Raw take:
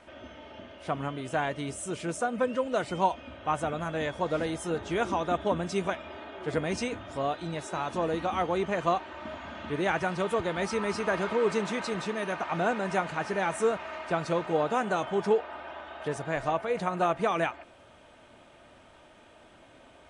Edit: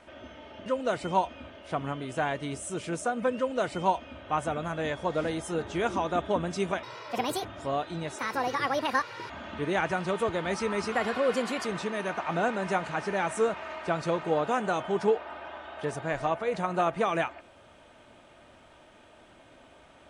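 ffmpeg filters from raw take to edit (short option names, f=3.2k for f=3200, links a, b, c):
-filter_complex "[0:a]asplit=9[a][b][c][d][e][f][g][h][i];[a]atrim=end=0.662[j];[b]atrim=start=2.528:end=3.372[k];[c]atrim=start=0.658:end=5.994[l];[d]atrim=start=5.99:end=6.96,asetpts=PTS-STARTPTS,asetrate=69237,aresample=44100,atrim=end_sample=27246,asetpts=PTS-STARTPTS[m];[e]atrim=start=6.956:end=7.704[n];[f]atrim=start=7.7:end=9.41,asetpts=PTS-STARTPTS,asetrate=67914,aresample=44100,atrim=end_sample=48968,asetpts=PTS-STARTPTS[o];[g]atrim=start=9.406:end=11.034[p];[h]atrim=start=11.03:end=11.88,asetpts=PTS-STARTPTS,asetrate=51156,aresample=44100[q];[i]atrim=start=11.876[r];[j][k]acrossfade=d=0.004:c1=hsin:c2=hsin[s];[s][l]acrossfade=d=0.004:c1=hsin:c2=hsin[t];[t][m]acrossfade=d=0.004:c1=hsin:c2=hsin[u];[u][n]acrossfade=d=0.004:c1=hsin:c2=hsin[v];[v][o]acrossfade=d=0.004:c1=hsin:c2=hsin[w];[w][p]acrossfade=d=0.004:c1=hsin:c2=hsin[x];[x][q]acrossfade=d=0.004:c1=hsin:c2=hsin[y];[y][r]acrossfade=d=0.004:c1=hsin:c2=hsin"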